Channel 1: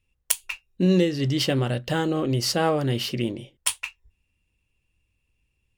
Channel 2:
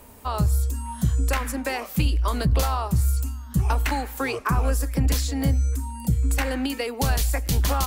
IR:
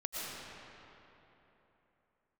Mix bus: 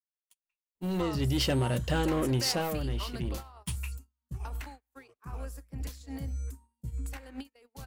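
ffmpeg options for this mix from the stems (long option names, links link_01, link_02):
-filter_complex "[0:a]asoftclip=type=tanh:threshold=-19.5dB,volume=-2dB,afade=type=in:start_time=0.76:duration=0.7:silence=0.375837,afade=type=out:start_time=2.51:duration=0.2:silence=0.398107[link_01];[1:a]alimiter=limit=-24dB:level=0:latency=1:release=225,adelay=750,volume=-4.5dB,asplit=2[link_02][link_03];[link_03]volume=-22.5dB,aecho=0:1:100:1[link_04];[link_01][link_02][link_04]amix=inputs=3:normalize=0,agate=range=-45dB:threshold=-34dB:ratio=16:detection=peak"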